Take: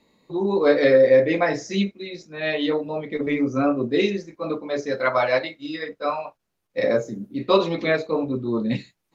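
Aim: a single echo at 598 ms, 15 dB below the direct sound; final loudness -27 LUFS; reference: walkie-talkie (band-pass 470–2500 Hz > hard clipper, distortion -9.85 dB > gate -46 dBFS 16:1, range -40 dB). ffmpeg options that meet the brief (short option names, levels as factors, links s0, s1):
-af "highpass=470,lowpass=2500,aecho=1:1:598:0.178,asoftclip=type=hard:threshold=0.112,agate=range=0.01:threshold=0.00501:ratio=16,volume=1.06"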